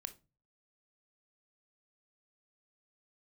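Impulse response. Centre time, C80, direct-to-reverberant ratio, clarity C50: 5 ms, 24.0 dB, 9.0 dB, 15.5 dB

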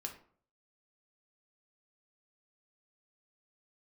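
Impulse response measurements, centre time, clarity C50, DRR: 15 ms, 9.5 dB, 2.0 dB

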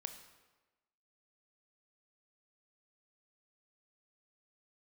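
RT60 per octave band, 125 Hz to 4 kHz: 1.0, 1.2, 1.2, 1.2, 1.1, 0.90 seconds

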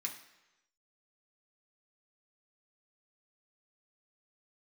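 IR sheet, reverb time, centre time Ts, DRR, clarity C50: 1.0 s, 19 ms, −0.5 dB, 9.0 dB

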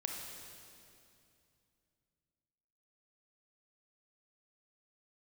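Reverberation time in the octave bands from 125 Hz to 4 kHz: 3.6, 3.2, 2.7, 2.5, 2.4, 2.4 seconds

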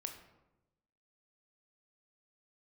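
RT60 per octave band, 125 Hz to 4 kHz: 1.3, 1.2, 1.1, 0.90, 0.70, 0.55 seconds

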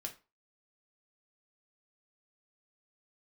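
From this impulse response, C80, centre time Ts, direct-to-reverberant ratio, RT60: 20.0 dB, 10 ms, 2.0 dB, 0.30 s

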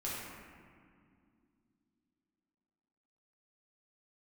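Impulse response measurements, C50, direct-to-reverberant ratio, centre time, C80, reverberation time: −2.0 dB, −7.5 dB, 118 ms, 0.5 dB, 2.3 s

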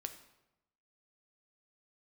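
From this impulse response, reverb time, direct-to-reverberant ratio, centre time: 0.95 s, 7.0 dB, 11 ms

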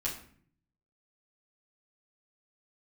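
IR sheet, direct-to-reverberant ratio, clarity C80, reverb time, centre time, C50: −6.0 dB, 11.5 dB, 0.55 s, 27 ms, 7.5 dB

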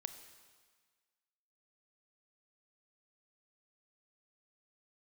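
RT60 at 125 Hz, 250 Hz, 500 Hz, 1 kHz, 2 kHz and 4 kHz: 1.4, 1.5, 1.5, 1.6, 1.6, 1.5 seconds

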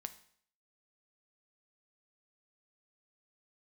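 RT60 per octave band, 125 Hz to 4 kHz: 0.60, 0.60, 0.60, 0.60, 0.60, 0.60 seconds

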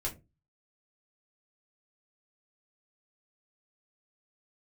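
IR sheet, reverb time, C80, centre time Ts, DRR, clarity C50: 0.25 s, 22.5 dB, 15 ms, −4.0 dB, 15.5 dB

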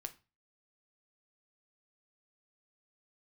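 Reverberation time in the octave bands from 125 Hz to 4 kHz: 0.45, 0.35, 0.30, 0.30, 0.30, 0.30 seconds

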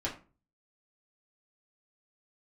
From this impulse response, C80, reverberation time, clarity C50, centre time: 15.5 dB, 0.35 s, 10.5 dB, 19 ms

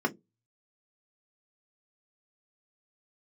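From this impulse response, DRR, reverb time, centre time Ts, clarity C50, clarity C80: 0.5 dB, 0.20 s, 5 ms, 22.0 dB, 32.5 dB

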